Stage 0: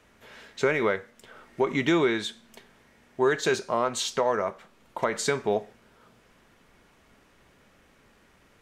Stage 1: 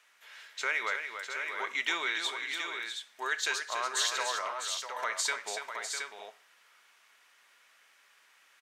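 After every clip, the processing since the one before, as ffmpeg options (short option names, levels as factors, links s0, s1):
-filter_complex "[0:a]highpass=1400,asplit=2[s0][s1];[s1]aecho=0:1:287|651|720:0.398|0.376|0.473[s2];[s0][s2]amix=inputs=2:normalize=0"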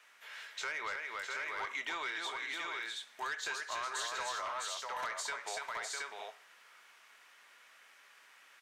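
-filter_complex "[0:a]acrossover=split=590|1200[s0][s1][s2];[s0]acompressor=threshold=0.00112:ratio=4[s3];[s1]acompressor=threshold=0.00891:ratio=4[s4];[s2]acompressor=threshold=0.00891:ratio=4[s5];[s3][s4][s5]amix=inputs=3:normalize=0,acrossover=split=3000[s6][s7];[s6]asoftclip=type=tanh:threshold=0.0158[s8];[s7]flanger=delay=18:depth=7.9:speed=1.9[s9];[s8][s9]amix=inputs=2:normalize=0,volume=1.5"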